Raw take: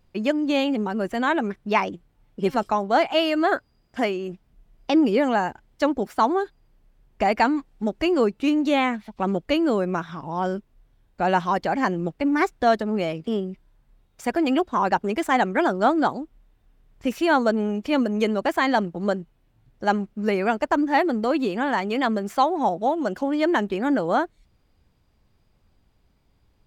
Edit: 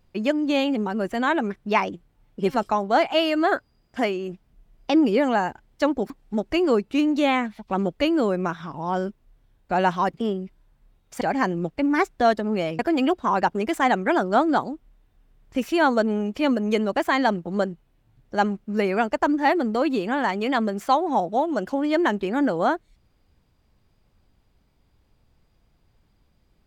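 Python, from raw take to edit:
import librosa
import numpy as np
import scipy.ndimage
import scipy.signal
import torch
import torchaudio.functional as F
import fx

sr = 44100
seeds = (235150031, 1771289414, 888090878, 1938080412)

y = fx.edit(x, sr, fx.cut(start_s=6.1, length_s=1.49),
    fx.move(start_s=13.21, length_s=1.07, to_s=11.63), tone=tone)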